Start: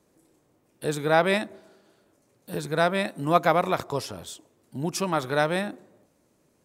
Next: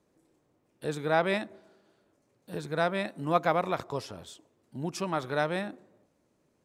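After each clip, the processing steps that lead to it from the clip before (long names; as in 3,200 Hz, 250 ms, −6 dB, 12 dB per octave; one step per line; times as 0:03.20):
high-shelf EQ 8,700 Hz −11.5 dB
level −5 dB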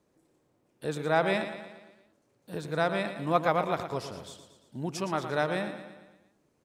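repeating echo 115 ms, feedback 53%, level −10 dB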